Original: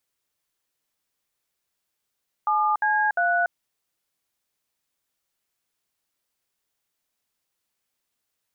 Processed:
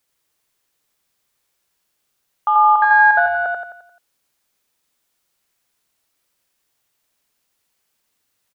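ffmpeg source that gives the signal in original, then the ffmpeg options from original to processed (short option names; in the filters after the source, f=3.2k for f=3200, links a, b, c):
-f lavfi -i "aevalsrc='0.0841*clip(min(mod(t,0.351),0.288-mod(t,0.351))/0.002,0,1)*(eq(floor(t/0.351),0)*(sin(2*PI*852*mod(t,0.351))+sin(2*PI*1209*mod(t,0.351)))+eq(floor(t/0.351),1)*(sin(2*PI*852*mod(t,0.351))+sin(2*PI*1633*mod(t,0.351)))+eq(floor(t/0.351),2)*(sin(2*PI*697*mod(t,0.351))+sin(2*PI*1477*mod(t,0.351))))':d=1.053:s=44100"
-filter_complex "[0:a]acontrast=71,asplit=2[a][b];[b]aecho=0:1:87|174|261|348|435|522:0.668|0.301|0.135|0.0609|0.0274|0.0123[c];[a][c]amix=inputs=2:normalize=0"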